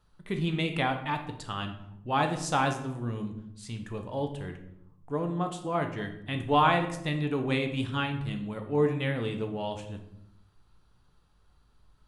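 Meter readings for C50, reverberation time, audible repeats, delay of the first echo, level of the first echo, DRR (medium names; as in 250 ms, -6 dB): 9.0 dB, 0.80 s, no echo, no echo, no echo, 5.0 dB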